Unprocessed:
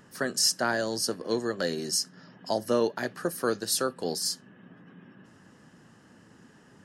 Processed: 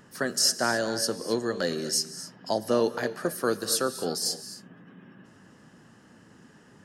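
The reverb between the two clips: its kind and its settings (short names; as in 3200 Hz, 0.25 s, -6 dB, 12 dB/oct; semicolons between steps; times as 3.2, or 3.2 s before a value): non-linear reverb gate 0.29 s rising, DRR 12 dB; gain +1 dB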